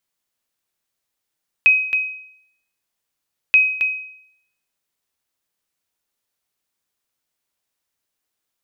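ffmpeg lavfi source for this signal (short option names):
-f lavfi -i "aevalsrc='0.501*(sin(2*PI*2530*mod(t,1.88))*exp(-6.91*mod(t,1.88)/0.69)+0.398*sin(2*PI*2530*max(mod(t,1.88)-0.27,0))*exp(-6.91*max(mod(t,1.88)-0.27,0)/0.69))':d=3.76:s=44100"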